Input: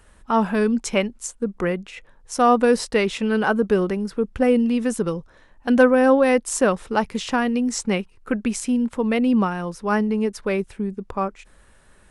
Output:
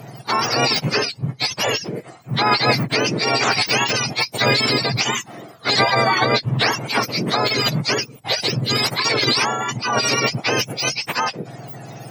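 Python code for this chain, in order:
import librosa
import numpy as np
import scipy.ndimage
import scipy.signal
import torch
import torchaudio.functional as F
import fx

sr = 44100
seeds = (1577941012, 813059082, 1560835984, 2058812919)

p1 = fx.octave_mirror(x, sr, pivot_hz=1100.0)
p2 = fx.formant_shift(p1, sr, semitones=-3)
p3 = fx.rider(p2, sr, range_db=4, speed_s=2.0)
p4 = p2 + (p3 * librosa.db_to_amplitude(-2.0))
p5 = fx.spectral_comp(p4, sr, ratio=2.0)
y = p5 * librosa.db_to_amplitude(-3.0)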